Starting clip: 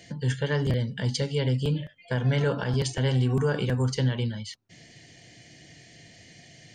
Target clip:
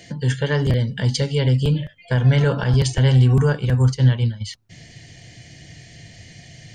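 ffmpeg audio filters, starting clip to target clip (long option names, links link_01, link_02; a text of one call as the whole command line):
ffmpeg -i in.wav -filter_complex "[0:a]asubboost=boost=3.5:cutoff=140,asplit=3[link_01][link_02][link_03];[link_01]afade=type=out:start_time=3.52:duration=0.02[link_04];[link_02]agate=range=-33dB:threshold=-19dB:ratio=3:detection=peak,afade=type=in:start_time=3.52:duration=0.02,afade=type=out:start_time=4.4:duration=0.02[link_05];[link_03]afade=type=in:start_time=4.4:duration=0.02[link_06];[link_04][link_05][link_06]amix=inputs=3:normalize=0,volume=6dB" out.wav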